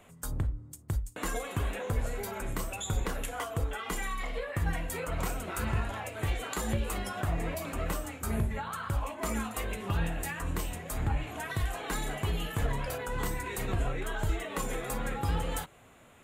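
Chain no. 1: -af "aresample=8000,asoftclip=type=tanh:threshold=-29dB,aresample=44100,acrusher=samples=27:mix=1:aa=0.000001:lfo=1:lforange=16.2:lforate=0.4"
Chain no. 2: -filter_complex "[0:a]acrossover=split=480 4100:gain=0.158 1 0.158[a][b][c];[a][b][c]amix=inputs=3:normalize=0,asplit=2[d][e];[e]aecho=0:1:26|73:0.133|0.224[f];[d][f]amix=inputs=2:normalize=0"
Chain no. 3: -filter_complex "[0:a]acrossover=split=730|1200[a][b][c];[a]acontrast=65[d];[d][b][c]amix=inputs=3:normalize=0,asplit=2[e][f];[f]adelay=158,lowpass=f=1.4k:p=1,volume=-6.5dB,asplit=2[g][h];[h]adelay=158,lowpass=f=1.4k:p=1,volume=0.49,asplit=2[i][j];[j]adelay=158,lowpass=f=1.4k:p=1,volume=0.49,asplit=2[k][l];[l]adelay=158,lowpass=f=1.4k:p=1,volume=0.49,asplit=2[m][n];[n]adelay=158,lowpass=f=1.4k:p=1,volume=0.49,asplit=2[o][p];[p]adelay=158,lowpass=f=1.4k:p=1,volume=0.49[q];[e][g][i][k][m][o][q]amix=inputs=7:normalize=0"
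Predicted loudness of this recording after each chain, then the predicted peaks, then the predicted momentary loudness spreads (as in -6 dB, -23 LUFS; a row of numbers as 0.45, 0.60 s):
-37.5, -39.5, -28.5 LUFS; -29.0, -23.0, -11.5 dBFS; 3, 4, 4 LU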